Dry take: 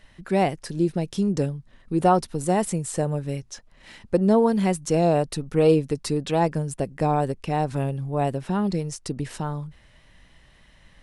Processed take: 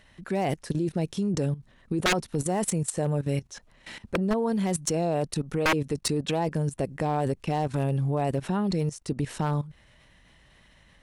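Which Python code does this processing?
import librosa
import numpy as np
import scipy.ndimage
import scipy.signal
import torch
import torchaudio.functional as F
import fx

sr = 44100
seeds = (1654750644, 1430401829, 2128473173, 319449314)

y = fx.highpass(x, sr, hz=40.0, slope=6)
y = fx.notch(y, sr, hz=4900.0, q=19.0)
y = fx.level_steps(y, sr, step_db=16)
y = 10.0 ** (-23.5 / 20.0) * (np.abs((y / 10.0 ** (-23.5 / 20.0) + 3.0) % 4.0 - 2.0) - 1.0)
y = F.gain(torch.from_numpy(y), 6.5).numpy()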